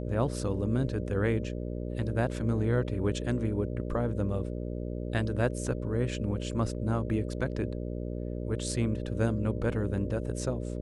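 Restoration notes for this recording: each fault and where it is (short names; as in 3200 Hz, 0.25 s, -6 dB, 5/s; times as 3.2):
buzz 60 Hz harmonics 10 -35 dBFS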